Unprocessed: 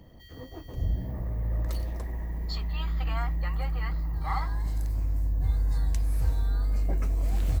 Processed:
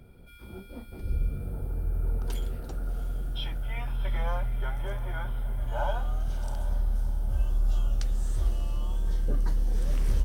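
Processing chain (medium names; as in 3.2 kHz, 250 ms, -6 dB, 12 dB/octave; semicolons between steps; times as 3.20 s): echo that smears into a reverb 538 ms, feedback 44%, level -12 dB; wide varispeed 0.742×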